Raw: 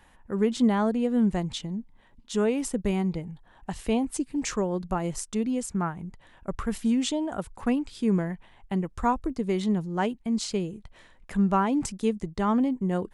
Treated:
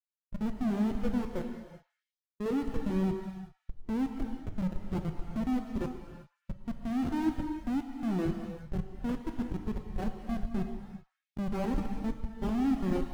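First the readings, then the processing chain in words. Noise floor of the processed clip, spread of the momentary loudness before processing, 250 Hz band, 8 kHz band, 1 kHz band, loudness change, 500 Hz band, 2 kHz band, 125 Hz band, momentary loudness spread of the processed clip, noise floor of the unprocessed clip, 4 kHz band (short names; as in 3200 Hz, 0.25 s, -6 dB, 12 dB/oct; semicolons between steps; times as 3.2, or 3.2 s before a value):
under -85 dBFS, 12 LU, -6.0 dB, under -20 dB, -11.0 dB, -6.5 dB, -9.5 dB, -9.0 dB, -5.0 dB, 15 LU, -57 dBFS, -14.0 dB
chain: minimum comb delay 3.8 ms; HPF 170 Hz 12 dB/oct; dynamic EQ 330 Hz, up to +6 dB, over -42 dBFS, Q 2.9; flange 0.27 Hz, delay 3.3 ms, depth 5.5 ms, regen -15%; Schmitt trigger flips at -27.5 dBFS; delay with a stepping band-pass 0.109 s, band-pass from 1100 Hz, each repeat 0.7 oct, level -10 dB; non-linear reverb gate 0.42 s flat, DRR 2 dB; spectral expander 1.5:1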